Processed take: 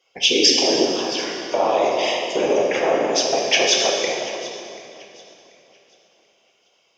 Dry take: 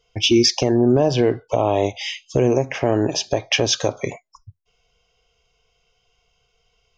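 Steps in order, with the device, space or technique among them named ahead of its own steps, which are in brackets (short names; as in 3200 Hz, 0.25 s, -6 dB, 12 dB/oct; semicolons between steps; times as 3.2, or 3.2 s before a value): 0.85–1.54 steep high-pass 1000 Hz; whispering ghost (whisperiser; HPF 520 Hz 12 dB/oct; reverb RT60 2.5 s, pre-delay 3 ms, DRR -1.5 dB); echo with dull and thin repeats by turns 0.368 s, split 1400 Hz, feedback 53%, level -13 dB; gain +1 dB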